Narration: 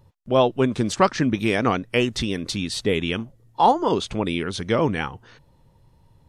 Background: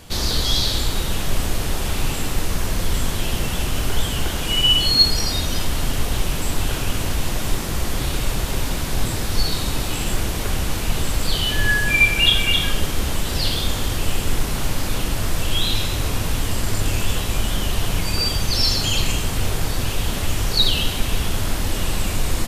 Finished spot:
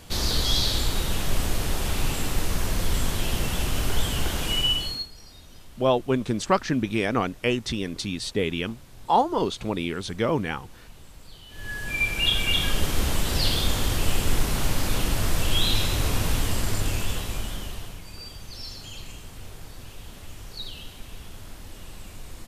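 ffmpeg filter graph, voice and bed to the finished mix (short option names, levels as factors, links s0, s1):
-filter_complex "[0:a]adelay=5500,volume=0.668[s0];[1:a]volume=10.6,afade=t=out:st=4.44:d=0.63:silence=0.0749894,afade=t=in:st=11.49:d=1.49:silence=0.0630957,afade=t=out:st=16.31:d=1.68:silence=0.133352[s1];[s0][s1]amix=inputs=2:normalize=0"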